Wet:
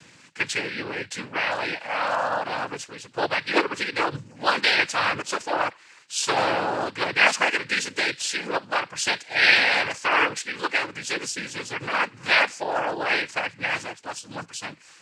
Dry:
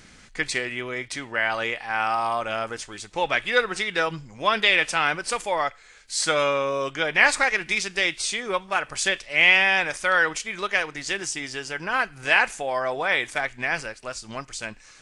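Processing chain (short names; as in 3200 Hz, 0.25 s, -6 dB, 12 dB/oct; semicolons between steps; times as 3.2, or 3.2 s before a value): 2.92–4.17 air absorption 63 m; noise vocoder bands 8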